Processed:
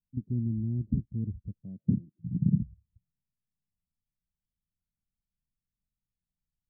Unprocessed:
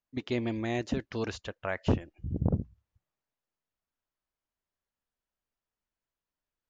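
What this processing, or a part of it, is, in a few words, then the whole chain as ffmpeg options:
the neighbour's flat through the wall: -filter_complex "[0:a]asettb=1/sr,asplit=3[a][b][c];[a]atrim=end=1.624[d];[b]atrim=start=1.62:end=2.61,asetpts=PTS-STARTPTS,afade=t=in:d=0.004:c=qsin,afade=t=out:st=0.986:d=0.004:c=qsin,highpass=f=140:w=0.5412,highpass=f=140:w=1.3066[e];[c]atrim=start=2.606[f];[d][e]acrossfade=d=0.004:c1=hsin:c2=qsin[g];[g][f]acrossfade=d=0.004:c1=qsin:c2=hsin,lowpass=f=190:w=0.5412,lowpass=f=190:w=1.3066,equalizer=f=180:t=o:w=0.77:g=3.5,volume=7dB"

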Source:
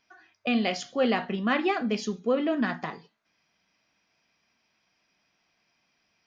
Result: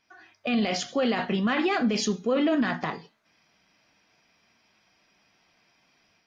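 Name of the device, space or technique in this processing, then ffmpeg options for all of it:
low-bitrate web radio: -filter_complex "[0:a]asettb=1/sr,asplit=3[a][b][c];[a]atrim=end=0.884[d];[b]atrim=start=0.88:end=2.71,asetpts=PTS-STARTPTS,afade=t=in:d=0.004:c=qsin,afade=t=out:st=1.826:d=0.004:c=qsin,highshelf=f=3.7k:g=5[e];[c]atrim=start=2.706[f];[d][e]acrossfade=d=0.004:c1=hsin:c2=qsin[g];[g][f]acrossfade=d=0.004:c1=qsin:c2=hsin,dynaudnorm=f=110:g=3:m=5.5dB,alimiter=limit=-17dB:level=0:latency=1:release=13" -ar 48000 -c:a aac -b:a 48k

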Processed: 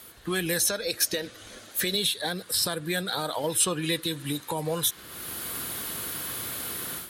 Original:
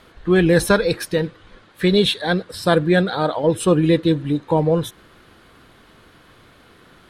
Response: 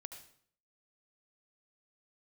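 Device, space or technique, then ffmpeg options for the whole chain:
FM broadcast chain: -filter_complex "[0:a]asettb=1/sr,asplit=3[a][b][c];[a]atrim=end=0.584[d];[b]atrim=start=0.58:end=1.95,asetpts=PTS-STARTPTS,afade=t=in:d=0.004:c=qsin,afade=t=out:st=1.366:d=0.004:c=qsin,equalizer=f=160:t=o:w=0.33:g=-11,equalizer=f=250:t=o:w=0.33:g=5,equalizer=f=630:t=o:w=0.33:g=8,equalizer=f=1k:t=o:w=0.33:g=-6,equalizer=f=6.3k:t=o:w=0.33:g=7[e];[c]atrim=start=1.946[f];[d][e]acrossfade=d=0.004:c1=hsin:c2=qsin[g];[g][f]acrossfade=d=0.004:c1=qsin:c2=hsin,highpass=50,dynaudnorm=f=240:g=3:m=14dB,acrossover=split=85|870|6600[h][i][j][k];[h]acompressor=threshold=-51dB:ratio=4[l];[i]acompressor=threshold=-25dB:ratio=4[m];[j]acompressor=threshold=-26dB:ratio=4[n];[k]acompressor=threshold=-50dB:ratio=4[o];[l][m][n][o]amix=inputs=4:normalize=0,aemphasis=mode=production:type=50fm,alimiter=limit=-13dB:level=0:latency=1:release=123,asoftclip=type=hard:threshold=-14dB,lowpass=f=15k:w=0.5412,lowpass=f=15k:w=1.3066,aemphasis=mode=production:type=50fm,volume=-5dB"

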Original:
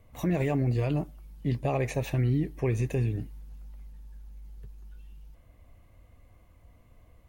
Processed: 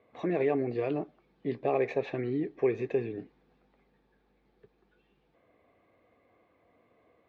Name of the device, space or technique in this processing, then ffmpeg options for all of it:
phone earpiece: -af "highpass=380,equalizer=f=410:t=q:w=4:g=5,equalizer=f=590:t=q:w=4:g=-4,equalizer=f=940:t=q:w=4:g=-7,equalizer=f=1.4k:t=q:w=4:g=-5,equalizer=f=2k:t=q:w=4:g=-4,equalizer=f=2.9k:t=q:w=4:g=-10,lowpass=f=3.2k:w=0.5412,lowpass=f=3.2k:w=1.3066,volume=4dB"

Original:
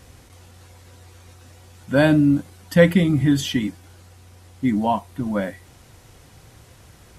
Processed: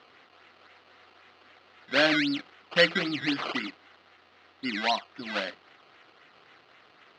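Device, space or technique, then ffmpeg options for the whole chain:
circuit-bent sampling toy: -af "acrusher=samples=17:mix=1:aa=0.000001:lfo=1:lforange=17:lforate=3.8,highpass=480,equalizer=f=540:t=q:w=4:g=-5,equalizer=f=920:t=q:w=4:g=-6,equalizer=f=1.3k:t=q:w=4:g=4,equalizer=f=2k:t=q:w=4:g=4,equalizer=f=2.9k:t=q:w=4:g=4,equalizer=f=4.2k:t=q:w=4:g=5,lowpass=f=4.5k:w=0.5412,lowpass=f=4.5k:w=1.3066,volume=-2.5dB"

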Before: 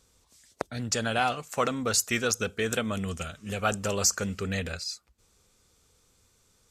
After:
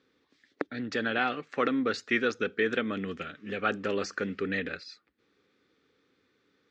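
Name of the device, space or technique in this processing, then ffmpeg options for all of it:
kitchen radio: -af "highpass=220,equalizer=f=290:t=q:w=4:g=10,equalizer=f=410:t=q:w=4:g=3,equalizer=f=660:t=q:w=4:g=-8,equalizer=f=950:t=q:w=4:g=-8,equalizer=f=1.8k:t=q:w=4:g=6,equalizer=f=2.9k:t=q:w=4:g=-4,lowpass=f=3.6k:w=0.5412,lowpass=f=3.6k:w=1.3066"

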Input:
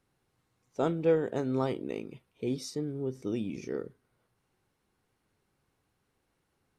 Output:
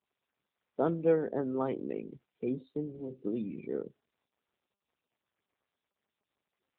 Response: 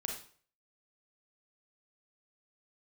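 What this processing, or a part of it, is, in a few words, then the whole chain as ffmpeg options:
mobile call with aggressive noise cancelling: -filter_complex "[0:a]asettb=1/sr,asplit=3[a][b][c];[a]atrim=end=2.004[d];[b]atrim=start=2:end=3.81,asetpts=PTS-STARTPTS,afade=t=in:d=0.004:c=qsin,afade=t=out:st=1.806:d=0.004:c=qsin,adynamicequalizer=threshold=0.00562:dfrequency=320:dqfactor=5.2:tfrequency=320:tqfactor=5.2:attack=5:release=100:ratio=0.375:range=1.5:mode=cutabove:tftype=bell[e];[c]atrim=start=3.806[f];[d][e]acrossfade=d=0.004:c1=hsin:c2=qsin[g];[g][f]acrossfade=d=0.004:c1=qsin:c2=hsin,highpass=f=140:w=0.5412,highpass=f=140:w=1.3066,afftdn=nr=24:nf=-44" -ar 8000 -c:a libopencore_amrnb -b:a 10200

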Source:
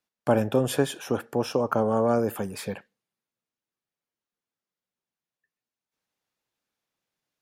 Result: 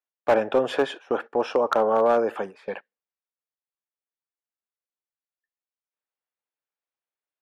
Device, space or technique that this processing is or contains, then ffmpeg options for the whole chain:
walkie-talkie: -af "highpass=450,lowpass=2.7k,asoftclip=type=hard:threshold=-18.5dB,agate=range=-15dB:threshold=-40dB:ratio=16:detection=peak,volume=6dB"

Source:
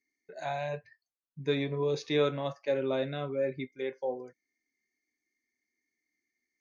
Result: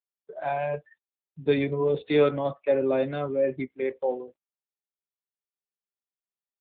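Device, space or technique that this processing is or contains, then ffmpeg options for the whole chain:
mobile call with aggressive noise cancelling: -af "highpass=150,afftdn=nr=35:nf=-47,volume=7dB" -ar 8000 -c:a libopencore_amrnb -b:a 7950

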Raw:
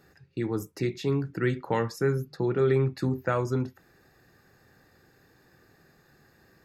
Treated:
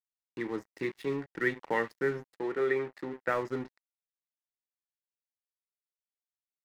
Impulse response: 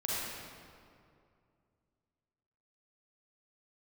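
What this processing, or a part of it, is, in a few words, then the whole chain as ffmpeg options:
pocket radio on a weak battery: -filter_complex "[0:a]highpass=260,lowpass=4.2k,aeval=exprs='sgn(val(0))*max(abs(val(0))-0.00708,0)':c=same,equalizer=f=1.9k:t=o:w=0.28:g=10,asettb=1/sr,asplit=3[a][b][c];[a]atrim=end=2.344[d];[b]atrim=start=2.34:end=3.28,asetpts=PTS-STARTPTS,afade=t=in:d=0.004:c=qsin,afade=t=out:st=0.936:d=0.004:c=qsin,bass=f=250:g=-10,treble=f=4k:g=-6[e];[c]atrim=start=3.276[f];[d][e]acrossfade=d=0.004:c1=hsin:c2=qsin[g];[g][f]acrossfade=d=0.004:c1=qsin:c2=hsin,volume=-2dB"

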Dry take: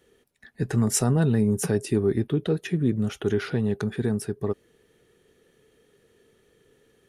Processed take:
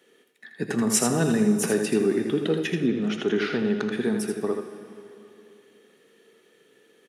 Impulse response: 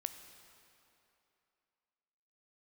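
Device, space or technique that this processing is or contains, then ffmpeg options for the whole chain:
PA in a hall: -filter_complex "[0:a]highpass=f=190:w=0.5412,highpass=f=190:w=1.3066,equalizer=f=2.5k:t=o:w=1.7:g=4.5,aecho=1:1:81:0.473[a];[1:a]atrim=start_sample=2205[b];[a][b]afir=irnorm=-1:irlink=0,asettb=1/sr,asplit=3[c][d][e];[c]atrim=end=2.864[f];[d]atrim=start=2.86:end=3.92,asetpts=PTS-STARTPTS,afade=t=in:d=0.004:c=qsin,afade=t=out:st=1.056:d=0.004:c=qsin,lowpass=5.8k[g];[e]atrim=start=3.916[h];[f][g]acrossfade=d=0.004:c1=hsin:c2=qsin[i];[i][h]acrossfade=d=0.004:c1=qsin:c2=hsin,volume=3dB"

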